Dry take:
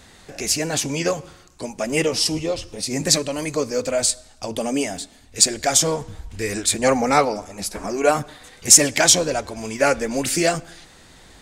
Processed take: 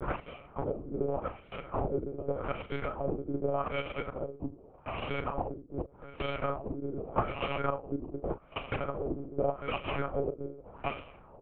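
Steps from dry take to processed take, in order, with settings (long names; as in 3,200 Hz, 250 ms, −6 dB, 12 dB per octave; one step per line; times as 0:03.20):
slices reordered back to front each 194 ms, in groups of 3
low shelf with overshoot 270 Hz −13 dB, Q 3
hum removal 111.3 Hz, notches 33
downward compressor 10 to 1, threshold −23 dBFS, peak gain reduction 17 dB
sample-rate reduction 1,800 Hz, jitter 0%
ring modulation 79 Hz
granular cloud, spray 30 ms, pitch spread up and down by 0 semitones
auto-filter low-pass sine 0.84 Hz 280–2,800 Hz
double-tracking delay 37 ms −11.5 dB
one-pitch LPC vocoder at 8 kHz 140 Hz
level −4 dB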